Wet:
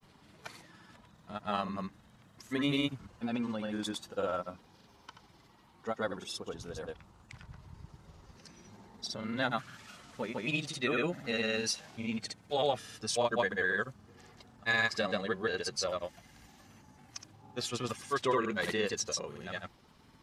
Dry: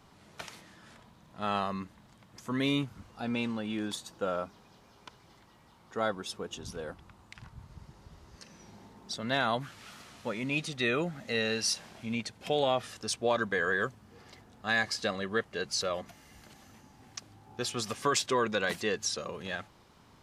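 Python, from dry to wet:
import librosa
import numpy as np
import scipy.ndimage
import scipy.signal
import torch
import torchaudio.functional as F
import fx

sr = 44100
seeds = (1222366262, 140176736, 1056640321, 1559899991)

y = fx.spec_quant(x, sr, step_db=15)
y = fx.granulator(y, sr, seeds[0], grain_ms=100.0, per_s=20.0, spray_ms=100.0, spread_st=0)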